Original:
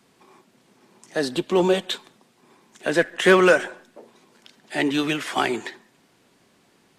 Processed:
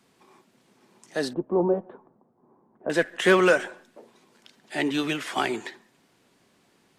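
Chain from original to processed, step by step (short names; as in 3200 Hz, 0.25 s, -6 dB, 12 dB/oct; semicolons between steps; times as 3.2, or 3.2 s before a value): 1.33–2.9 LPF 1000 Hz 24 dB/oct; gain -3.5 dB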